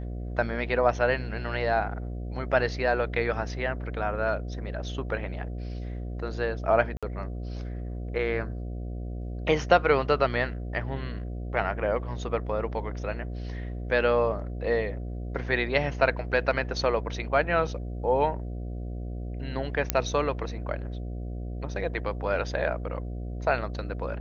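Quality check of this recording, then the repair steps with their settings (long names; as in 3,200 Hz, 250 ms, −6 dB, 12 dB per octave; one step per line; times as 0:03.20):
mains buzz 60 Hz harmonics 12 −34 dBFS
0:06.97–0:07.03: drop-out 56 ms
0:19.90: click −5 dBFS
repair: click removal
hum removal 60 Hz, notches 12
repair the gap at 0:06.97, 56 ms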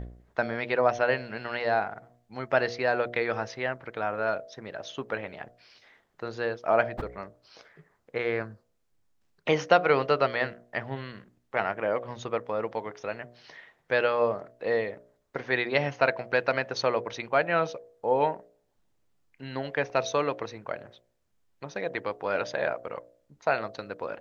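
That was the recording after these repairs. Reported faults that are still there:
none of them is left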